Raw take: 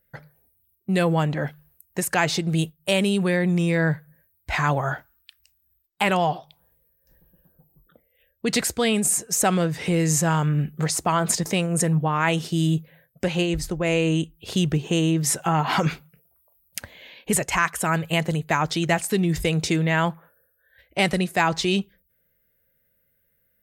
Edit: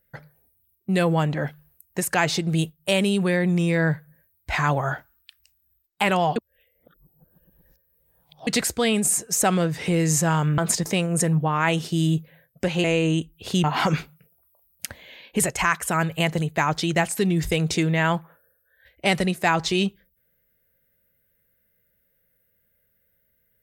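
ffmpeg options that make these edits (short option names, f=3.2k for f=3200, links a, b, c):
-filter_complex "[0:a]asplit=6[a][b][c][d][e][f];[a]atrim=end=6.362[g];[b]atrim=start=6.358:end=8.472,asetpts=PTS-STARTPTS,areverse[h];[c]atrim=start=8.468:end=10.582[i];[d]atrim=start=11.178:end=13.442[j];[e]atrim=start=13.858:end=14.662[k];[f]atrim=start=15.568[l];[g][h]acrossfade=d=0.004:c1=hsin:c2=hsin[m];[m][i]acrossfade=d=0.004:c1=hsin:c2=hsin[n];[n][j]acrossfade=d=0.004:c1=hsin:c2=hsin[o];[o][k]acrossfade=d=0.004:c1=hsin:c2=hsin[p];[p][l]acrossfade=d=0.004:c1=hsin:c2=hsin"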